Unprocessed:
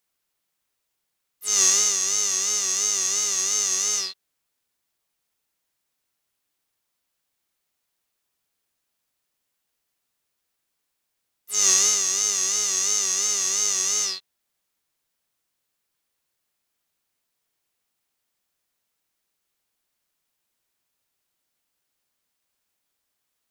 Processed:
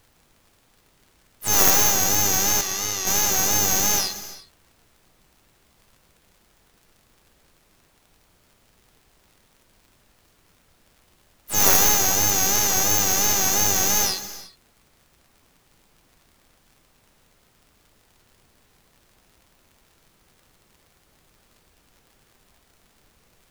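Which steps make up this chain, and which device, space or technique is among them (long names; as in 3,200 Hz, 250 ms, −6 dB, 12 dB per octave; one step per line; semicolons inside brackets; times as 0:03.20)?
0:02.61–0:03.07: high-frequency loss of the air 110 metres
record under a worn stylus (stylus tracing distortion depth 0.16 ms; surface crackle; pink noise bed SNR 35 dB)
reverb whose tail is shaped and stops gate 390 ms flat, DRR 11.5 dB
level +3 dB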